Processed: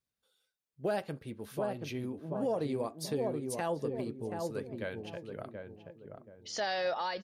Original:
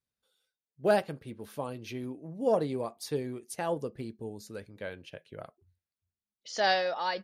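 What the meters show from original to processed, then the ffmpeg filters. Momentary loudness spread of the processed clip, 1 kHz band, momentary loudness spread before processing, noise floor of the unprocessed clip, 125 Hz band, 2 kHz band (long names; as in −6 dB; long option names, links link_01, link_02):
14 LU, −5.0 dB, 19 LU, below −85 dBFS, 0.0 dB, −5.5 dB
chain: -filter_complex "[0:a]asplit=2[link_01][link_02];[link_02]adelay=729,lowpass=frequency=840:poles=1,volume=-4dB,asplit=2[link_03][link_04];[link_04]adelay=729,lowpass=frequency=840:poles=1,volume=0.36,asplit=2[link_05][link_06];[link_06]adelay=729,lowpass=frequency=840:poles=1,volume=0.36,asplit=2[link_07][link_08];[link_08]adelay=729,lowpass=frequency=840:poles=1,volume=0.36,asplit=2[link_09][link_10];[link_10]adelay=729,lowpass=frequency=840:poles=1,volume=0.36[link_11];[link_03][link_05][link_07][link_09][link_11]amix=inputs=5:normalize=0[link_12];[link_01][link_12]amix=inputs=2:normalize=0,alimiter=limit=-24dB:level=0:latency=1:release=154"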